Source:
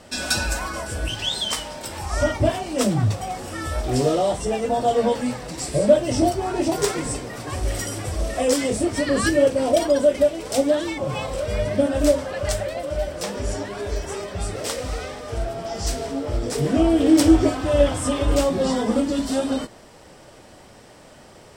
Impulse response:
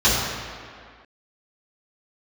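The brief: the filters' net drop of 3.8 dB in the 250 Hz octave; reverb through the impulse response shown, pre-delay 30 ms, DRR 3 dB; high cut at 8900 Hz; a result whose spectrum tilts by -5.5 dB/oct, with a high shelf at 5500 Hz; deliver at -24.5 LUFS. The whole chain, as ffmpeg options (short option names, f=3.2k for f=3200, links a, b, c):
-filter_complex "[0:a]lowpass=8.9k,equalizer=f=250:t=o:g=-5,highshelf=f=5.5k:g=-6,asplit=2[a][b];[1:a]atrim=start_sample=2205,adelay=30[c];[b][c]afir=irnorm=-1:irlink=0,volume=-24.5dB[d];[a][d]amix=inputs=2:normalize=0,volume=-3.5dB"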